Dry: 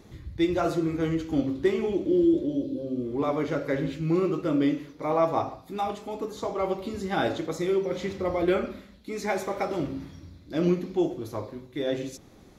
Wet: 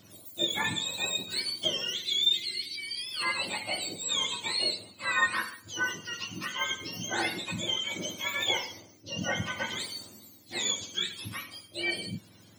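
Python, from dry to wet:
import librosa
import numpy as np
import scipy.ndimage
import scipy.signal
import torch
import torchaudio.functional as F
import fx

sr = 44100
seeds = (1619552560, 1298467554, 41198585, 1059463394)

y = fx.octave_mirror(x, sr, pivot_hz=1100.0)
y = fx.bass_treble(y, sr, bass_db=-3, treble_db=4, at=(5.48, 6.72))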